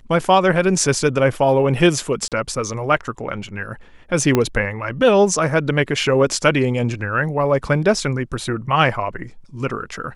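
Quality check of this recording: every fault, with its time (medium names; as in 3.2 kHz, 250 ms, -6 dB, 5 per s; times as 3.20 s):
2.28–2.32 s: dropout 37 ms
4.35 s: pop -3 dBFS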